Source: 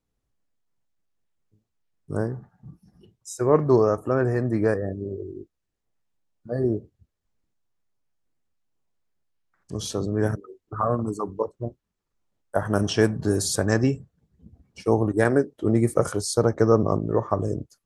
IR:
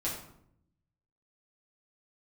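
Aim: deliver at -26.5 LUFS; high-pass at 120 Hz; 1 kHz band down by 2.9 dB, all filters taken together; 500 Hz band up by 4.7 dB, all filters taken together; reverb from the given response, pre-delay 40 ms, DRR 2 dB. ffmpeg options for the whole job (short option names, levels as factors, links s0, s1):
-filter_complex "[0:a]highpass=120,equalizer=f=500:t=o:g=7,equalizer=f=1000:t=o:g=-6.5,asplit=2[s0][s1];[1:a]atrim=start_sample=2205,adelay=40[s2];[s1][s2]afir=irnorm=-1:irlink=0,volume=0.473[s3];[s0][s3]amix=inputs=2:normalize=0,volume=0.422"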